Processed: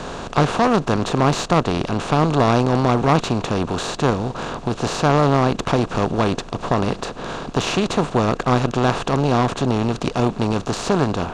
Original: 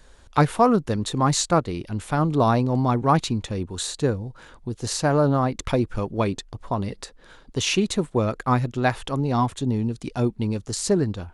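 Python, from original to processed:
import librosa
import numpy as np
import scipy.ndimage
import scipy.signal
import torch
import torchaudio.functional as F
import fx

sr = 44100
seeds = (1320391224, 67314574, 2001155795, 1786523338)

y = fx.bin_compress(x, sr, power=0.4)
y = fx.air_absorb(y, sr, metres=82.0)
y = fx.cheby_harmonics(y, sr, harmonics=(8,), levels_db=(-21,), full_scale_db=9.5)
y = y * 10.0 ** (-2.5 / 20.0)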